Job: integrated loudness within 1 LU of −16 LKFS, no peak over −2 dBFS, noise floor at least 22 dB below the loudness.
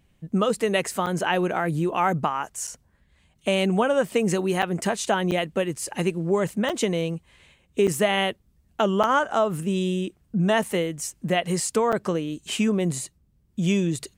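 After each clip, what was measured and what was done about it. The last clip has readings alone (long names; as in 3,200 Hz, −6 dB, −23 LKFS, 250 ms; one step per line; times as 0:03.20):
number of dropouts 8; longest dropout 6.6 ms; integrated loudness −24.5 LKFS; sample peak −8.5 dBFS; target loudness −16.0 LKFS
→ repair the gap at 0:01.06/0:02.67/0:04.62/0:05.31/0:06.69/0:07.87/0:09.03/0:11.92, 6.6 ms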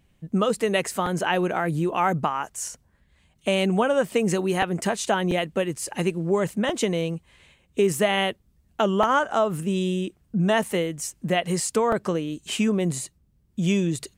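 number of dropouts 0; integrated loudness −24.5 LKFS; sample peak −7.0 dBFS; target loudness −16.0 LKFS
→ level +8.5 dB
brickwall limiter −2 dBFS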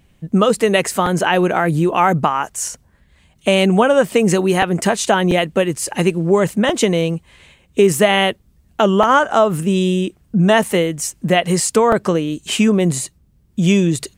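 integrated loudness −16.0 LKFS; sample peak −2.0 dBFS; background noise floor −56 dBFS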